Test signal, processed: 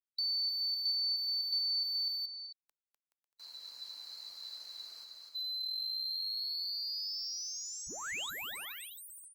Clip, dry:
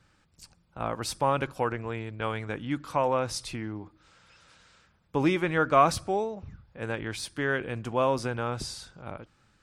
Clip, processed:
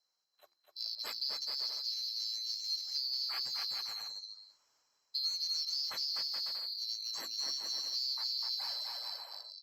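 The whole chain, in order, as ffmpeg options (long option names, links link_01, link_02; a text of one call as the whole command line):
ffmpeg -i in.wav -filter_complex "[0:a]afftfilt=real='real(if(lt(b,736),b+184*(1-2*mod(floor(b/184),2)),b),0)':imag='imag(if(lt(b,736),b+184*(1-2*mod(floor(b/184),2)),b),0)':win_size=2048:overlap=0.75,lowshelf=frequency=220:gain=-10,bandreject=frequency=3600:width=18,afftdn=noise_reduction=15:noise_floor=-40,equalizer=frequency=970:width_type=o:width=1.9:gain=6,bandreject=frequency=50:width_type=h:width=6,bandreject=frequency=100:width_type=h:width=6,bandreject=frequency=150:width_type=h:width=6,bandreject=frequency=200:width_type=h:width=6,bandreject=frequency=250:width_type=h:width=6,bandreject=frequency=300:width_type=h:width=6,bandreject=frequency=350:width_type=h:width=6,aecho=1:1:250|425|547.5|633.2|693.3:0.631|0.398|0.251|0.158|0.1,acrossover=split=1600[link_01][link_02];[link_02]alimiter=limit=-16.5dB:level=0:latency=1:release=482[link_03];[link_01][link_03]amix=inputs=2:normalize=0,acrossover=split=300|1700|4900[link_04][link_05][link_06][link_07];[link_04]acompressor=threshold=-54dB:ratio=4[link_08];[link_05]acompressor=threshold=-50dB:ratio=4[link_09];[link_06]acompressor=threshold=-24dB:ratio=4[link_10];[link_07]acompressor=threshold=-37dB:ratio=4[link_11];[link_08][link_09][link_10][link_11]amix=inputs=4:normalize=0,asplit=2[link_12][link_13];[link_13]aeval=exprs='0.02*(abs(mod(val(0)/0.02+3,4)-2)-1)':channel_layout=same,volume=-10dB[link_14];[link_12][link_14]amix=inputs=2:normalize=0,acrossover=split=5900[link_15][link_16];[link_16]acompressor=threshold=-41dB:ratio=4:attack=1:release=60[link_17];[link_15][link_17]amix=inputs=2:normalize=0,volume=-6dB" -ar 48000 -c:a libopus -b:a 64k out.opus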